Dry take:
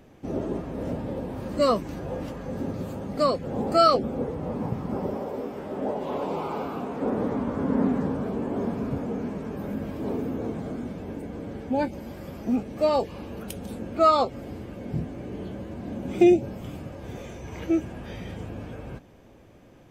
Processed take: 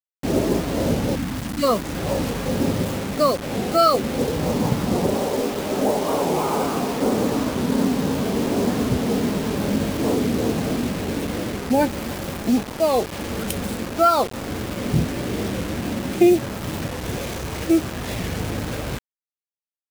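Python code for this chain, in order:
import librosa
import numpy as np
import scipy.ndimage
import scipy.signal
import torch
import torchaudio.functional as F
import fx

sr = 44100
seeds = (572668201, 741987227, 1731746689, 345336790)

y = fx.rider(x, sr, range_db=4, speed_s=0.5)
y = fx.spec_erase(y, sr, start_s=1.16, length_s=0.47, low_hz=340.0, high_hz=1500.0)
y = fx.quant_dither(y, sr, seeds[0], bits=6, dither='none')
y = fx.record_warp(y, sr, rpm=45.0, depth_cents=160.0)
y = y * librosa.db_to_amplitude(5.5)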